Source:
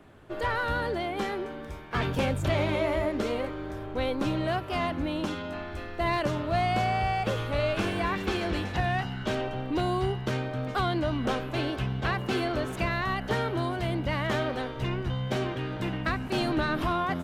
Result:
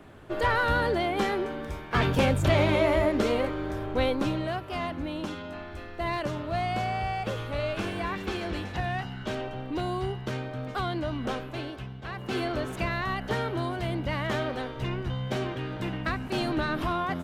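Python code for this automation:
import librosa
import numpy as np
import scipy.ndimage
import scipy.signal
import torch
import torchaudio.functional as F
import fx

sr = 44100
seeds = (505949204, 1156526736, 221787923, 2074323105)

y = fx.gain(x, sr, db=fx.line((4.01, 4.0), (4.52, -3.0), (11.38, -3.0), (12.03, -11.0), (12.38, -1.0)))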